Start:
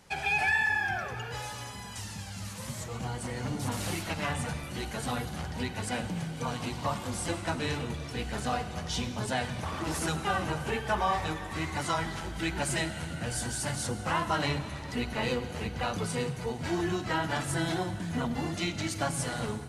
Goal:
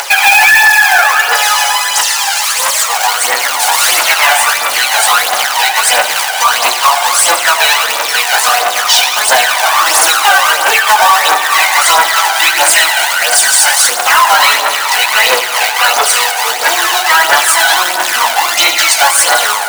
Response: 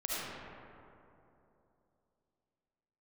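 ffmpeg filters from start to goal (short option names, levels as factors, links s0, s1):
-filter_complex "[0:a]acompressor=mode=upward:threshold=0.00891:ratio=2.5,flanger=delay=7:depth=9.9:regen=-15:speed=0.29:shape=triangular,acompressor=threshold=0.0112:ratio=2,acrusher=bits=2:mode=log:mix=0:aa=0.000001,highpass=f=750:w=0.5412,highpass=f=750:w=1.3066,asplit=2[s0][s1];[1:a]atrim=start_sample=2205,lowshelf=f=210:g=12[s2];[s1][s2]afir=irnorm=-1:irlink=0,volume=0.251[s3];[s0][s3]amix=inputs=2:normalize=0,aphaser=in_gain=1:out_gain=1:delay=1.4:decay=0.53:speed=1.5:type=triangular,apsyclip=47.3,volume=0.841"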